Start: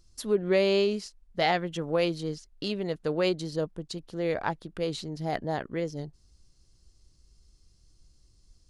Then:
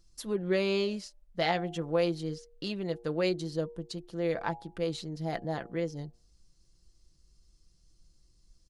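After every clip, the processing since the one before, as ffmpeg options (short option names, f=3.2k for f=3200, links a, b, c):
-af "aecho=1:1:5.9:0.41,bandreject=f=118.1:t=h:w=4,bandreject=f=236.2:t=h:w=4,bandreject=f=354.3:t=h:w=4,bandreject=f=472.4:t=h:w=4,bandreject=f=590.5:t=h:w=4,bandreject=f=708.6:t=h:w=4,bandreject=f=826.7:t=h:w=4,bandreject=f=944.8:t=h:w=4,volume=-4dB"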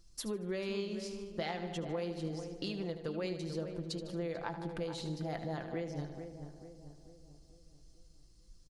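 -filter_complex "[0:a]asplit=2[a][b];[b]aecho=0:1:76|152|228|304|380:0.251|0.131|0.0679|0.0353|0.0184[c];[a][c]amix=inputs=2:normalize=0,acompressor=threshold=-37dB:ratio=6,asplit=2[d][e];[e]adelay=441,lowpass=f=1.2k:p=1,volume=-8dB,asplit=2[f][g];[g]adelay=441,lowpass=f=1.2k:p=1,volume=0.51,asplit=2[h][i];[i]adelay=441,lowpass=f=1.2k:p=1,volume=0.51,asplit=2[j][k];[k]adelay=441,lowpass=f=1.2k:p=1,volume=0.51,asplit=2[l][m];[m]adelay=441,lowpass=f=1.2k:p=1,volume=0.51,asplit=2[n][o];[o]adelay=441,lowpass=f=1.2k:p=1,volume=0.51[p];[f][h][j][l][n][p]amix=inputs=6:normalize=0[q];[d][q]amix=inputs=2:normalize=0,volume=1.5dB"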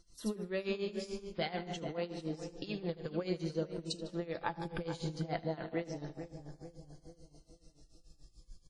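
-af "afftfilt=real='re*pow(10,6/40*sin(2*PI*(1.9*log(max(b,1)*sr/1024/100)/log(2)-(-0.54)*(pts-256)/sr)))':imag='im*pow(10,6/40*sin(2*PI*(1.9*log(max(b,1)*sr/1024/100)/log(2)-(-0.54)*(pts-256)/sr)))':win_size=1024:overlap=0.75,tremolo=f=6.9:d=0.86,volume=3.5dB" -ar 44100 -c:a wmav2 -b:a 32k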